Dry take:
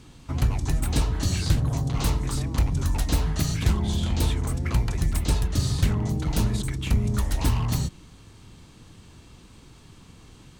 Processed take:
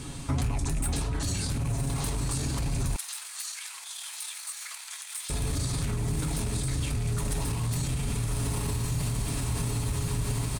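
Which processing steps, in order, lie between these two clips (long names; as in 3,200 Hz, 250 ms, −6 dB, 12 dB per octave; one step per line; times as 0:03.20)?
loose part that buzzes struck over −19 dBFS, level −29 dBFS
notch filter 2,900 Hz, Q 29
comb filter 7.2 ms, depth 40%
feedback delay with all-pass diffusion 1,129 ms, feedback 53%, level −4 dB
brickwall limiter −27.5 dBFS, peak gain reduction 18.5 dB
parametric band 9,200 Hz +11.5 dB 0.45 octaves
convolution reverb RT60 1.5 s, pre-delay 6 ms, DRR 12 dB
speech leveller 0.5 s
0:02.96–0:05.30: Bessel high-pass filter 1,700 Hz, order 4
level +5 dB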